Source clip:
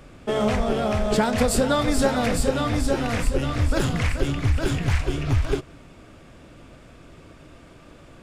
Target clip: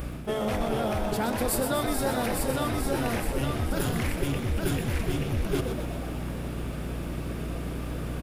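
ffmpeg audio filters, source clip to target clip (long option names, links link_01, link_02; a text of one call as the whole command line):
ffmpeg -i in.wav -filter_complex "[0:a]aeval=exprs='val(0)+0.00891*(sin(2*PI*60*n/s)+sin(2*PI*2*60*n/s)/2+sin(2*PI*3*60*n/s)/3+sin(2*PI*4*60*n/s)/4+sin(2*PI*5*60*n/s)/5)':channel_layout=same,areverse,acompressor=threshold=-32dB:ratio=16,areverse,aexciter=amount=6.2:drive=3.5:freq=10000,asplit=9[link_01][link_02][link_03][link_04][link_05][link_06][link_07][link_08][link_09];[link_02]adelay=124,afreqshift=95,volume=-8dB[link_10];[link_03]adelay=248,afreqshift=190,volume=-12.2dB[link_11];[link_04]adelay=372,afreqshift=285,volume=-16.3dB[link_12];[link_05]adelay=496,afreqshift=380,volume=-20.5dB[link_13];[link_06]adelay=620,afreqshift=475,volume=-24.6dB[link_14];[link_07]adelay=744,afreqshift=570,volume=-28.8dB[link_15];[link_08]adelay=868,afreqshift=665,volume=-32.9dB[link_16];[link_09]adelay=992,afreqshift=760,volume=-37.1dB[link_17];[link_01][link_10][link_11][link_12][link_13][link_14][link_15][link_16][link_17]amix=inputs=9:normalize=0,volume=7.5dB" out.wav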